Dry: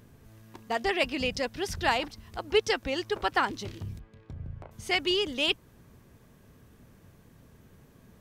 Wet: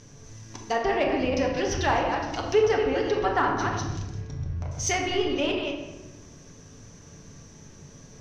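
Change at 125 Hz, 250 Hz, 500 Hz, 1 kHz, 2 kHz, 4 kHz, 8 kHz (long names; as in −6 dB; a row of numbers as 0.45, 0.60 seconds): +9.0, +6.5, +6.0, +5.0, +0.5, −3.5, +10.0 decibels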